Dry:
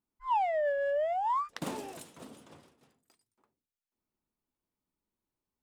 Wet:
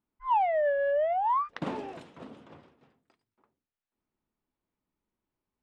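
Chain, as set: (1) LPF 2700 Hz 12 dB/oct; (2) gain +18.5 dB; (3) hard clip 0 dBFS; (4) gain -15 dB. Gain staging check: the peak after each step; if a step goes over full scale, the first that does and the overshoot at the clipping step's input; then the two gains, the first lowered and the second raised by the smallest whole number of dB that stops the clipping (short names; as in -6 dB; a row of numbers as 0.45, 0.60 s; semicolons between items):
-22.0, -3.5, -3.5, -18.5 dBFS; no overload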